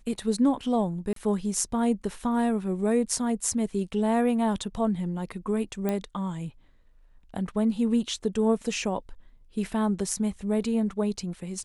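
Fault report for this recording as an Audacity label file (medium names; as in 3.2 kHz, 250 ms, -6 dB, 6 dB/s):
1.130000	1.160000	dropout 33 ms
5.890000	5.890000	pop -15 dBFS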